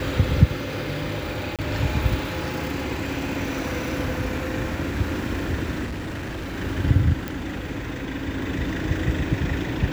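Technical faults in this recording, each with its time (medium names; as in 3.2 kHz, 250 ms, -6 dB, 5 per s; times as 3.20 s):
1.56–1.59 s: dropout 27 ms
5.85–6.57 s: clipped -27.5 dBFS
7.28 s: pop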